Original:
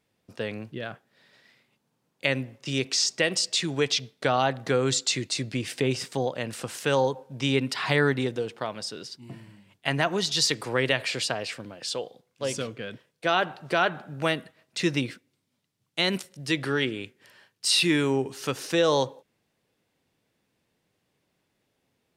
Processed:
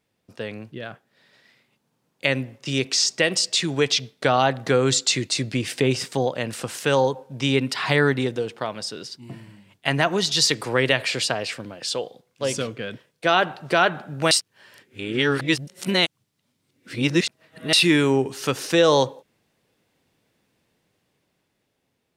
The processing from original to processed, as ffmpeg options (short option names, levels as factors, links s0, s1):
-filter_complex "[0:a]asplit=3[s0][s1][s2];[s0]atrim=end=14.312[s3];[s1]atrim=start=14.308:end=17.732,asetpts=PTS-STARTPTS,areverse[s4];[s2]atrim=start=17.728[s5];[s3][s4]acrossfade=d=0.004:c1=hsin:c2=hsin[s6];[s6][s5]acrossfade=d=0.004:c1=hsin:c2=hsin,dynaudnorm=f=350:g=9:m=2"